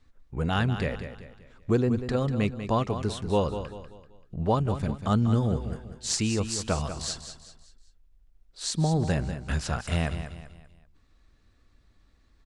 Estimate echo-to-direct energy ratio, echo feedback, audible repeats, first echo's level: −9.5 dB, 39%, 4, −10.0 dB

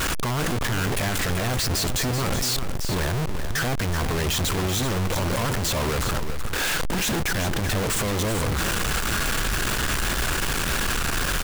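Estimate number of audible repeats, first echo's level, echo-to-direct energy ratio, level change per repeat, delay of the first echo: 1, −8.5 dB, −8.5 dB, repeats not evenly spaced, 382 ms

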